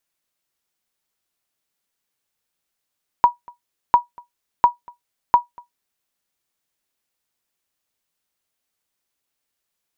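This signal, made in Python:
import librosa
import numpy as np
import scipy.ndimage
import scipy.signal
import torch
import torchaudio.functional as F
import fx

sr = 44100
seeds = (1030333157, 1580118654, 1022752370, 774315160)

y = fx.sonar_ping(sr, hz=964.0, decay_s=0.14, every_s=0.7, pings=4, echo_s=0.24, echo_db=-27.5, level_db=-3.0)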